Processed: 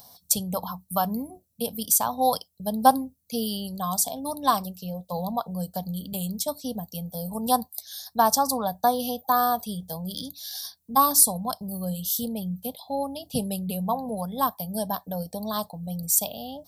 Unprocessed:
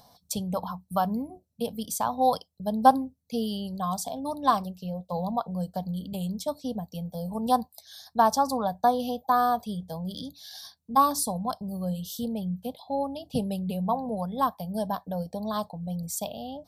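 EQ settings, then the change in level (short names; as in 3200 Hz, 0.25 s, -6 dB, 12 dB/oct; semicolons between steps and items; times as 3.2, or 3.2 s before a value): high shelf 4000 Hz +8.5 dB; high shelf 9300 Hz +10 dB; 0.0 dB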